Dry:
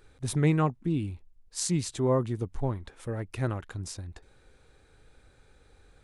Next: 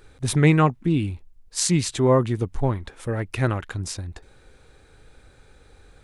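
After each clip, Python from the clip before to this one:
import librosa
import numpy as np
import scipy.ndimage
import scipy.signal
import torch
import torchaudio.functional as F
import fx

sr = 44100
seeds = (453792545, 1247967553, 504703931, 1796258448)

y = fx.dynamic_eq(x, sr, hz=2300.0, q=0.77, threshold_db=-49.0, ratio=4.0, max_db=5)
y = y * librosa.db_to_amplitude(7.0)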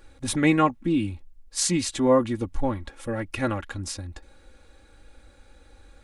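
y = x + 0.73 * np.pad(x, (int(3.6 * sr / 1000.0), 0))[:len(x)]
y = y * librosa.db_to_amplitude(-3.0)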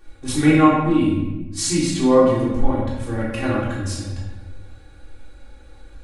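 y = fx.room_shoebox(x, sr, seeds[0], volume_m3=640.0, walls='mixed', distance_m=3.5)
y = y * librosa.db_to_amplitude(-4.0)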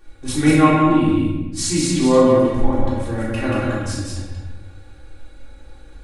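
y = x + 10.0 ** (-3.5 / 20.0) * np.pad(x, (int(183 * sr / 1000.0), 0))[:len(x)]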